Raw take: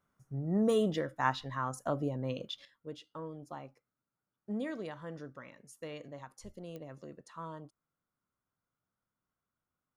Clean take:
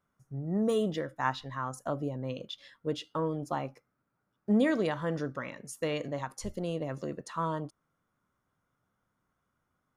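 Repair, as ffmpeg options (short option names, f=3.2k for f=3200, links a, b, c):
-af "adeclick=t=4,asetnsamples=n=441:p=0,asendcmd='2.65 volume volume 11.5dB',volume=0dB"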